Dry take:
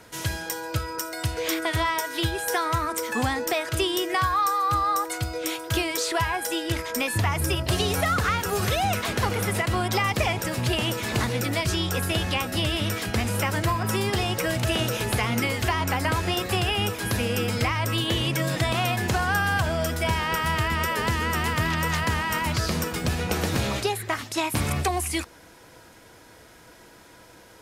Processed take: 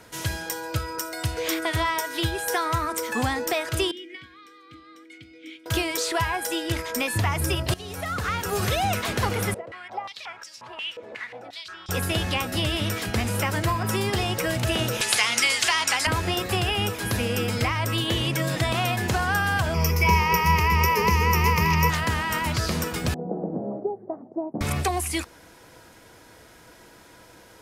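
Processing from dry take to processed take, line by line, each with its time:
3.91–5.66 vowel filter i
7.74–8.59 fade in, from -19 dB
9.54–11.89 stepped band-pass 5.6 Hz 520–5500 Hz
15.01–16.07 weighting filter ITU-R 468
19.74–21.9 ripple EQ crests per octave 0.81, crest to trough 17 dB
23.14–24.61 elliptic band-pass 170–720 Hz, stop band 60 dB

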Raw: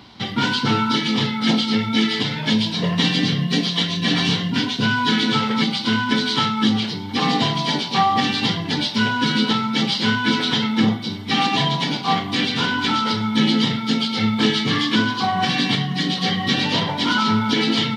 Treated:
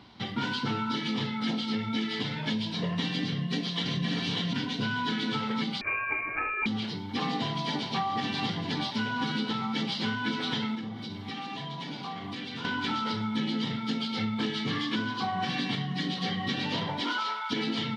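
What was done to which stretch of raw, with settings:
3.26–3.94 echo throw 0.59 s, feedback 30%, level -0.5 dB
5.81–6.66 inverted band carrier 2600 Hz
7.34–8.08 echo throw 0.41 s, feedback 80%, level -10.5 dB
10.75–12.65 compressor 12:1, threshold -25 dBFS
17–17.5 HPF 220 Hz -> 900 Hz 24 dB/oct
whole clip: high shelf 6000 Hz -9 dB; compressor, threshold -19 dBFS; gain -7.5 dB

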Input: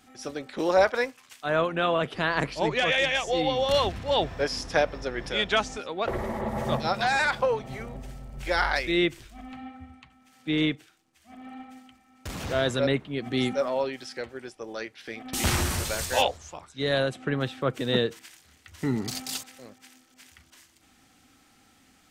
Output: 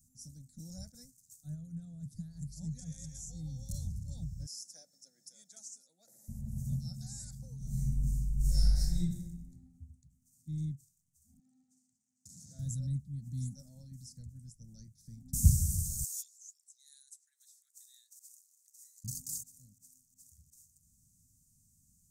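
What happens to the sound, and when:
1.54–2.52 compressor 4:1, threshold -26 dBFS
4.46–6.28 HPF 400 Hz 24 dB/oct
7.57–8.99 reverb throw, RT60 1.1 s, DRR -11.5 dB
11.39–12.59 BPF 330–6900 Hz
13.91–15.53 low shelf 270 Hz +9.5 dB
16.04–19.04 steep high-pass 1700 Hz
whole clip: elliptic band-stop 160–6700 Hz, stop band 40 dB; bell 2500 Hz -10.5 dB 0.96 oct; gain -1 dB

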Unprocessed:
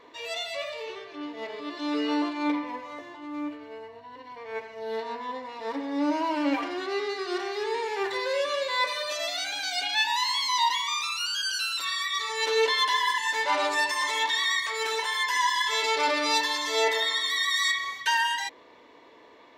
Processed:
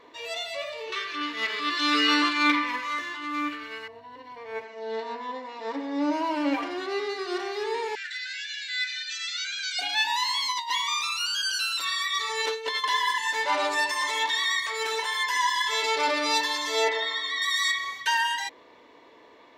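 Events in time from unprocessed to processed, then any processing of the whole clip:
0.92–3.88 EQ curve 330 Hz 0 dB, 790 Hz -8 dB, 1200 Hz +14 dB
4.64–6.13 brick-wall FIR band-pass 160–8200 Hz
7.95–9.79 brick-wall FIR band-pass 1300–8200 Hz
10.5–12.84 negative-ratio compressor -27 dBFS, ratio -0.5
16.89–17.42 air absorption 130 m

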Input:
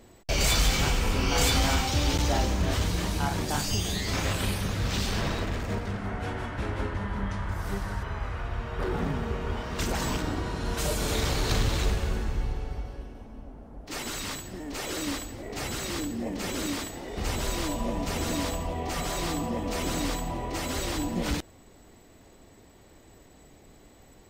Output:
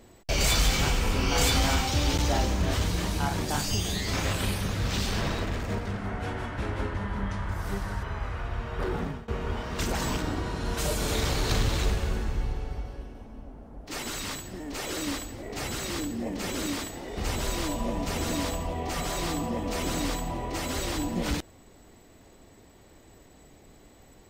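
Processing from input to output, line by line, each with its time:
8.81–9.28 fade out equal-power, to -22 dB

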